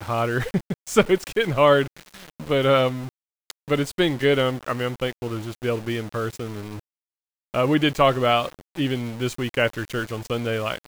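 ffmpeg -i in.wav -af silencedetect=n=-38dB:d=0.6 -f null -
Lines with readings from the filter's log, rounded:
silence_start: 6.79
silence_end: 7.54 | silence_duration: 0.74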